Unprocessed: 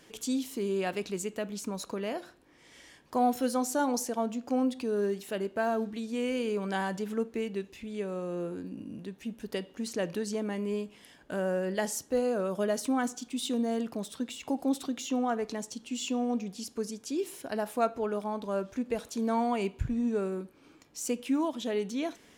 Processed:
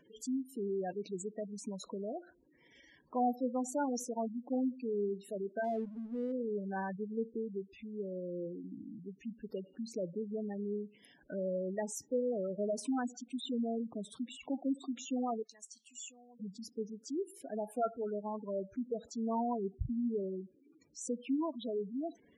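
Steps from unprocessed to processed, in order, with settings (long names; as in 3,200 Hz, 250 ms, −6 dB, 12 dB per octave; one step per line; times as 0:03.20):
0:15.42–0:16.40: first-order pre-emphasis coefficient 0.97
gate on every frequency bin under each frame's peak −10 dB strong
0:05.64–0:06.32: slack as between gear wheels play −47 dBFS
level −5 dB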